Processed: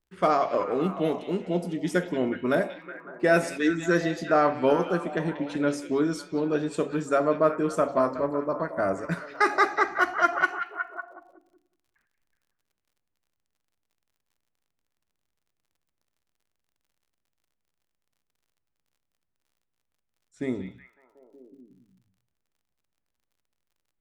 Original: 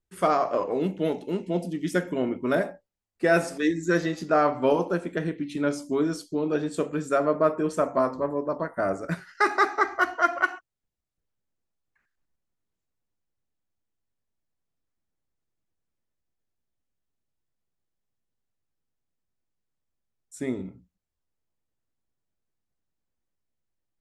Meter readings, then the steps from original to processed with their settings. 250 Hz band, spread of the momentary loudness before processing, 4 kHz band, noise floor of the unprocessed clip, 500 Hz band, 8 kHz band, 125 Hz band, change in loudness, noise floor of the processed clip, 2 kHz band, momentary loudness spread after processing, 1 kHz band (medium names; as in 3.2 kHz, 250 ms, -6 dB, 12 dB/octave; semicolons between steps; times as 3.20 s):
0.0 dB, 8 LU, +0.5 dB, -84 dBFS, 0.0 dB, -0.5 dB, 0.0 dB, 0.0 dB, -81 dBFS, +0.5 dB, 10 LU, +0.5 dB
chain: repeats whose band climbs or falls 185 ms, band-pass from 2.9 kHz, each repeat -0.7 oct, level -6.5 dB; level-controlled noise filter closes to 2.9 kHz, open at -23 dBFS; crackle 48 per s -58 dBFS